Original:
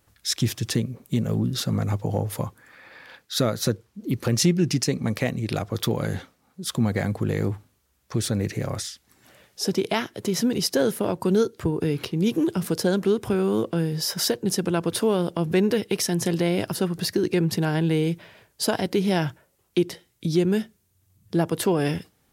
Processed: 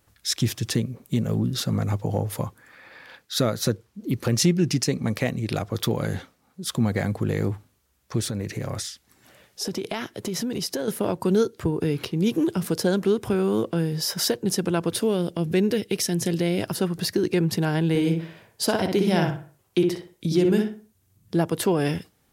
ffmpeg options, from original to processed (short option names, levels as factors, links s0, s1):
-filter_complex "[0:a]asettb=1/sr,asplit=3[s0][s1][s2];[s0]atrim=end=8.204[s3];[s1]atrim=start=8.2:end=10.88,asetpts=PTS-STARTPTS,afade=t=in:d=0.004:c=qsin,afade=t=out:st=2.676:d=0.004:c=qsin,acompressor=threshold=0.0631:ratio=6:attack=3.2:release=140:knee=1:detection=peak[s4];[s2]atrim=start=10.876[s5];[s3][s4]acrossfade=d=0.004:c1=hsin:c2=qsin[s6];[s6][s5]acrossfade=d=0.004:c1=qsin:c2=hsin,asettb=1/sr,asplit=3[s7][s8][s9];[s7]atrim=end=14.954[s10];[s8]atrim=start=14.95:end=16.61,asetpts=PTS-STARTPTS,afade=t=in:d=0.004:c=qsin,afade=t=out:st=1.656:d=0.004:c=qsin,equalizer=f=1000:w=1.1:g=-7[s11];[s9]atrim=start=16.606[s12];[s10][s11]acrossfade=d=0.004:c1=hsin:c2=qsin[s13];[s13][s12]acrossfade=d=0.004:c1=qsin:c2=hsin,asettb=1/sr,asplit=3[s14][s15][s16];[s14]atrim=end=17.894[s17];[s15]atrim=start=17.89:end=21.35,asetpts=PTS-STARTPTS,afade=t=in:d=0.004:c=qsin,afade=t=out:st=3.456:d=0.004:c=qsin,asplit=2[s18][s19];[s19]adelay=61,lowpass=f=2000:p=1,volume=0.708,asplit=2[s20][s21];[s21]adelay=61,lowpass=f=2000:p=1,volume=0.36,asplit=2[s22][s23];[s23]adelay=61,lowpass=f=2000:p=1,volume=0.36,asplit=2[s24][s25];[s25]adelay=61,lowpass=f=2000:p=1,volume=0.36,asplit=2[s26][s27];[s27]adelay=61,lowpass=f=2000:p=1,volume=0.36[s28];[s18][s20][s22][s24][s26][s28]amix=inputs=6:normalize=0,atrim=end_sample=152586[s29];[s16]atrim=start=21.346[s30];[s17][s29]acrossfade=d=0.004:c1=hsin:c2=qsin[s31];[s31][s30]acrossfade=d=0.004:c1=qsin:c2=hsin"